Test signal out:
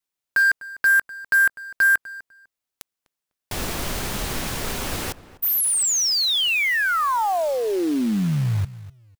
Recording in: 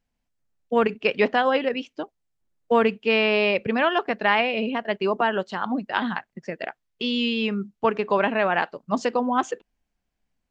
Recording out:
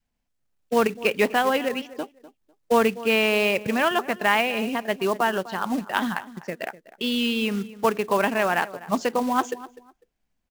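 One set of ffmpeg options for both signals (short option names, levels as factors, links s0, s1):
-filter_complex "[0:a]adynamicequalizer=threshold=0.0282:dfrequency=500:dqfactor=1.8:tfrequency=500:tqfactor=1.8:attack=5:release=100:ratio=0.375:range=1.5:mode=cutabove:tftype=bell,asplit=2[s0][s1];[s1]adelay=250,lowpass=f=1700:p=1,volume=0.15,asplit=2[s2][s3];[s3]adelay=250,lowpass=f=1700:p=1,volume=0.22[s4];[s0][s2][s4]amix=inputs=3:normalize=0,acrusher=bits=4:mode=log:mix=0:aa=0.000001"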